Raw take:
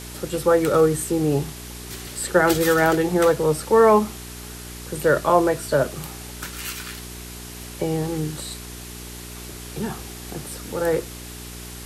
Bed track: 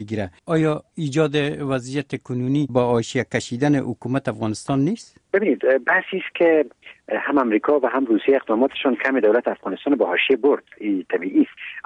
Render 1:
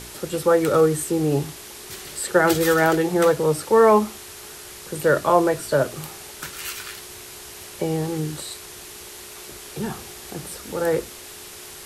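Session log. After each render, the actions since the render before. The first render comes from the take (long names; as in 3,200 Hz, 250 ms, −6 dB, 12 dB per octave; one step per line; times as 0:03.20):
hum removal 60 Hz, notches 5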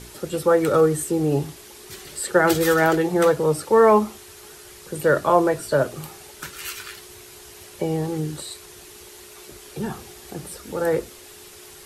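broadband denoise 6 dB, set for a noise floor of −40 dBFS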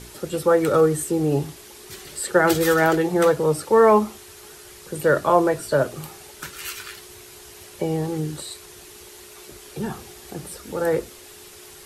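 no processing that can be heard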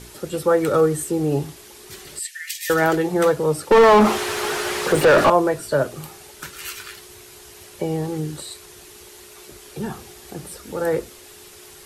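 0:02.19–0:02.70: Chebyshev high-pass with heavy ripple 1,800 Hz, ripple 3 dB
0:03.71–0:05.30: mid-hump overdrive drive 36 dB, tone 1,300 Hz, clips at −5 dBFS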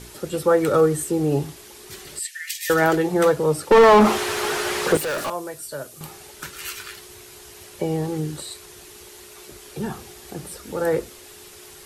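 0:04.97–0:06.01: first-order pre-emphasis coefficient 0.8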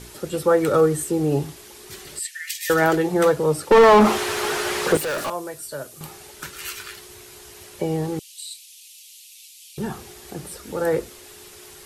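0:08.19–0:09.78: Butterworth high-pass 2,500 Hz 48 dB per octave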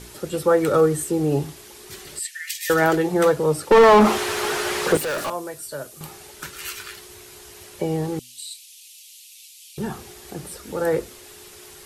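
hum removal 123.4 Hz, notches 2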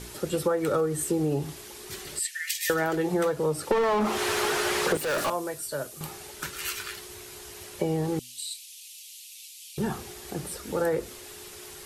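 downward compressor 10 to 1, threshold −22 dBFS, peak gain reduction 13 dB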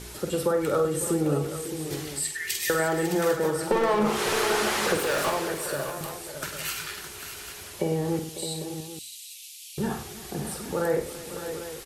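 multi-tap delay 48/99/334/549/613/798 ms −7.5/−11.5/−18/−13.5/−10/−13 dB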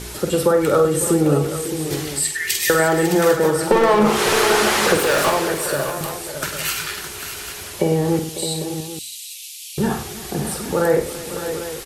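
level +8.5 dB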